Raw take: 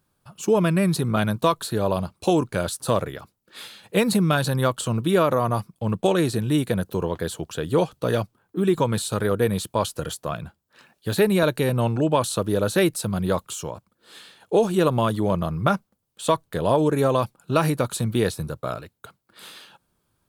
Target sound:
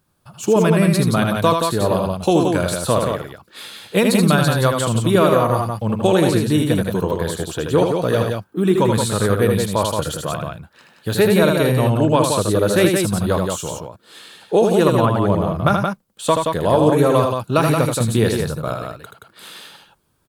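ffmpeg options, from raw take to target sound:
-filter_complex "[0:a]asettb=1/sr,asplit=3[a][b][c];[a]atrim=end=14.884[d];[b]atrim=start=14.88:end=15.54,asetpts=PTS-STARTPTS,afade=t=in:d=0.004:c=qsin,afade=t=out:st=0.656:d=0.004:c=qsin,acrossover=split=2800[e][f];[f]acompressor=threshold=-50dB:ratio=4:attack=1:release=60[g];[e][g]amix=inputs=2:normalize=0[h];[c]atrim=start=15.536[i];[d][h]acrossfade=d=0.004:c1=hsin:c2=qsin[j];[j][i]acrossfade=d=0.004:c1=qsin:c2=hsin,aecho=1:1:78.72|174.9:0.562|0.562,volume=3.5dB"

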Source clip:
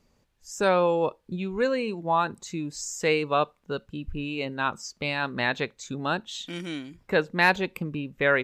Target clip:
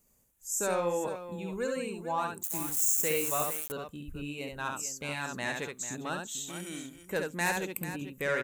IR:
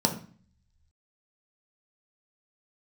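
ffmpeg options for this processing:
-filter_complex "[0:a]asoftclip=type=tanh:threshold=-12.5dB,asplit=2[a][b];[b]aecho=0:1:69|444:0.631|0.266[c];[a][c]amix=inputs=2:normalize=0,asettb=1/sr,asplit=3[d][e][f];[d]atrim=end=2.434[g];[e]atrim=start=2.43:end=3.72,asetpts=PTS-STARTPTS,afade=t=in:d=0.004:c=qsin,afade=t=out:st=1.286:d=0.004:c=qsin,aeval=exprs='val(0)*gte(abs(val(0)),0.0224)':c=same[h];[f]atrim=start=3.716[i];[g][h]acrossfade=d=0.004:c1=hsin:c2=qsin[j];[j][i]acrossfade=d=0.004:c1=qsin:c2=hsin,aexciter=amount=13.5:drive=2.9:freq=6.9k,volume=-8.5dB"

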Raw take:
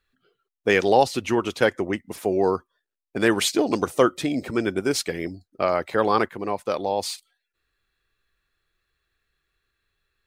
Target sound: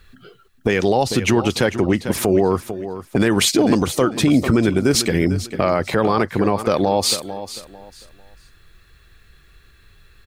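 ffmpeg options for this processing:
-af "bass=f=250:g=9,treble=f=4k:g=1,acompressor=threshold=-33dB:ratio=4,aecho=1:1:447|894|1341:0.188|0.049|0.0127,alimiter=level_in=25dB:limit=-1dB:release=50:level=0:latency=1,volume=-5dB"

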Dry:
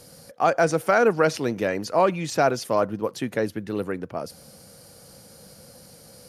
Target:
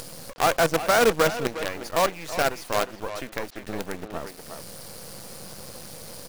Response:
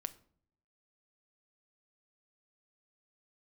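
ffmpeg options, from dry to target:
-filter_complex "[0:a]deesser=0.65,asettb=1/sr,asplit=3[a][b][c];[a]atrim=end=1.474[d];[b]atrim=start=1.47:end=3.66,asetpts=PTS-STARTPTS,afade=t=in:d=0.004:c=qsin,afade=t=out:st=2.186:d=0.004:c=qsin,equalizer=f=98:w=0.35:g=-11[e];[c]atrim=start=3.656[f];[d][e]acrossfade=d=0.004:c1=hsin:c2=qsin[g];[g][f]acrossfade=d=0.004:c1=qsin:c2=hsin,acompressor=mode=upward:threshold=-24dB:ratio=2.5,acrusher=bits=4:dc=4:mix=0:aa=0.000001,asplit=2[h][i];[i]adelay=360,highpass=300,lowpass=3.4k,asoftclip=type=hard:threshold=-21dB,volume=-6dB[j];[h][j]amix=inputs=2:normalize=0,volume=-1.5dB"

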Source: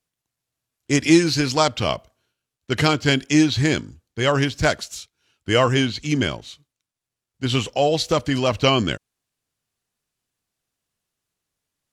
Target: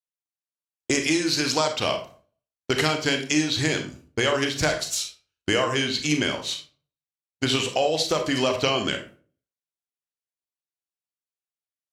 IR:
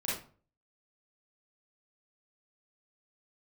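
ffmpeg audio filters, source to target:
-filter_complex "[0:a]agate=range=-33dB:threshold=-40dB:ratio=3:detection=peak,bass=f=250:g=-11,treble=f=4k:g=3,acompressor=threshold=-34dB:ratio=5,asplit=2[a][b];[1:a]atrim=start_sample=2205[c];[b][c]afir=irnorm=-1:irlink=0,volume=-7dB[d];[a][d]amix=inputs=2:normalize=0,volume=9dB"

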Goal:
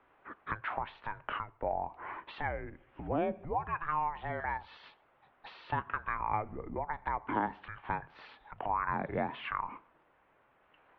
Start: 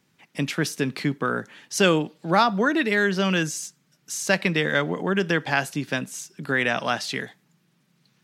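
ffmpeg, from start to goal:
-filter_complex "[0:a]asetrate=33075,aresample=44100,acompressor=threshold=-36dB:ratio=5,acrossover=split=520 2100:gain=0.0708 1 0.112[a][b][c];[a][b][c]amix=inputs=3:normalize=0,highpass=f=190:t=q:w=0.5412,highpass=f=190:t=q:w=1.307,lowpass=f=3.5k:t=q:w=0.5176,lowpass=f=3.5k:t=q:w=0.7071,lowpass=f=3.5k:t=q:w=1.932,afreqshift=-320,volume=9dB"

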